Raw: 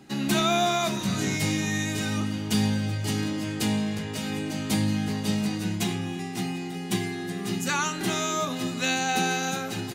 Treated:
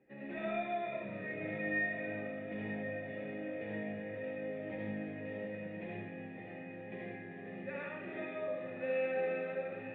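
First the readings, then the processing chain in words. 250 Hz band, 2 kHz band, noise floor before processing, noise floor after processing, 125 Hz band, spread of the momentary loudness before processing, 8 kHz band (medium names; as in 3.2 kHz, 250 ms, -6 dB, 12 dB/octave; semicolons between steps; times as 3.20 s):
-16.0 dB, -9.0 dB, -34 dBFS, -47 dBFS, -20.0 dB, 7 LU, under -40 dB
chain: cascade formant filter e; echo that smears into a reverb 1101 ms, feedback 63%, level -11 dB; algorithmic reverb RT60 0.78 s, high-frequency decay 0.95×, pre-delay 30 ms, DRR -4 dB; trim -4 dB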